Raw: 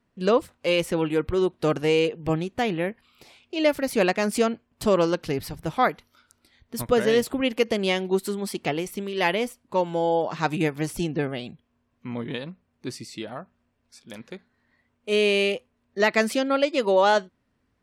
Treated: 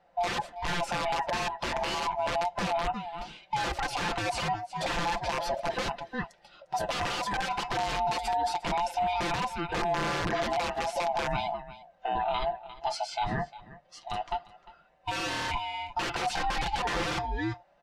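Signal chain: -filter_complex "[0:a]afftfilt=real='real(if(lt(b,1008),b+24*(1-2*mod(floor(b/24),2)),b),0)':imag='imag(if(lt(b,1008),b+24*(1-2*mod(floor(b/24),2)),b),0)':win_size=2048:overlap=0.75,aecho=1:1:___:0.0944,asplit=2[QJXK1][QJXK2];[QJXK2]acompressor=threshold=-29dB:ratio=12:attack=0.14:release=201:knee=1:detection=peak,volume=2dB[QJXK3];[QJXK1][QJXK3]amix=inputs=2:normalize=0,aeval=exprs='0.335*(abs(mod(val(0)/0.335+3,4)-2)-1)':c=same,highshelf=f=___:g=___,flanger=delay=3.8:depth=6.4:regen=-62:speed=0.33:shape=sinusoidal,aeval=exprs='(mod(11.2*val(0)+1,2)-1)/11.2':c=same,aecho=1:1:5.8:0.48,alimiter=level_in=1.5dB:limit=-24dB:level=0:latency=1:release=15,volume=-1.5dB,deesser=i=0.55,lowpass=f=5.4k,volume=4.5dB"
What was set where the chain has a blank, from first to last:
351, 2.2k, -4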